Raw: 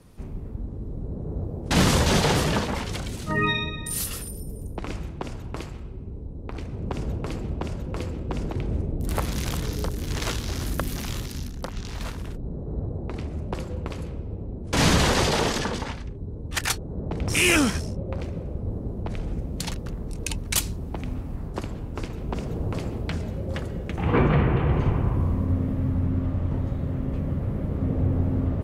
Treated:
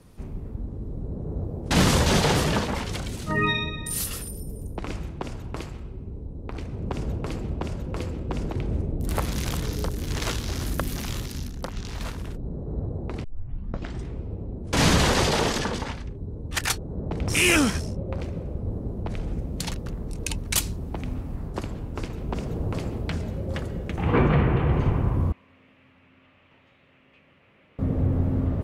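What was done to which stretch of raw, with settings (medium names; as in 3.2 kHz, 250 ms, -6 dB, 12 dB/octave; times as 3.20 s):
13.24 s: tape start 0.99 s
25.32–27.79 s: band-pass filter 2.6 kHz, Q 3.5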